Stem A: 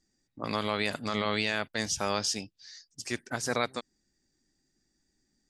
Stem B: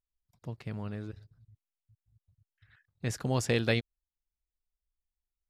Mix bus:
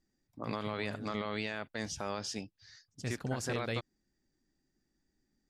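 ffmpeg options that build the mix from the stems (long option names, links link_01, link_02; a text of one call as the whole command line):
ffmpeg -i stem1.wav -i stem2.wav -filter_complex "[0:a]highshelf=frequency=3600:gain=-11.5,volume=-2dB[link_01];[1:a]volume=-5dB[link_02];[link_01][link_02]amix=inputs=2:normalize=0,alimiter=limit=-23.5dB:level=0:latency=1:release=77" out.wav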